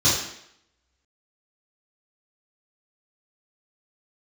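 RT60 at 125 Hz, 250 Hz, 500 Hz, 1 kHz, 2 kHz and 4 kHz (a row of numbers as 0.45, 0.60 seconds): 0.55, 0.70, 0.75, 0.75, 0.75, 0.70 seconds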